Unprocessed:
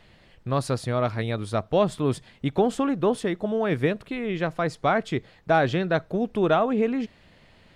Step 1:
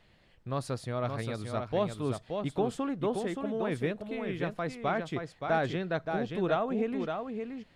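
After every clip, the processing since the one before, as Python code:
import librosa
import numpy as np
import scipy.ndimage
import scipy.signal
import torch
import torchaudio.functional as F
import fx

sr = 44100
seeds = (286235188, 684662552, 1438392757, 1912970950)

y = x + 10.0 ** (-5.5 / 20.0) * np.pad(x, (int(574 * sr / 1000.0), 0))[:len(x)]
y = y * librosa.db_to_amplitude(-8.5)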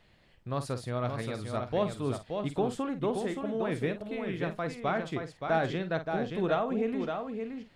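y = fx.doubler(x, sr, ms=49.0, db=-11)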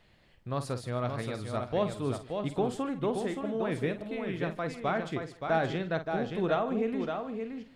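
y = x + 10.0 ** (-20.0 / 20.0) * np.pad(x, (int(151 * sr / 1000.0), 0))[:len(x)]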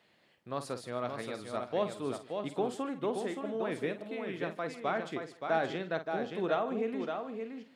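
y = scipy.signal.sosfilt(scipy.signal.butter(2, 230.0, 'highpass', fs=sr, output='sos'), x)
y = y * librosa.db_to_amplitude(-2.0)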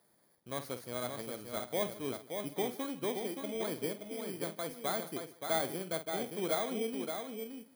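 y = fx.bit_reversed(x, sr, seeds[0], block=16)
y = y * librosa.db_to_amplitude(-2.5)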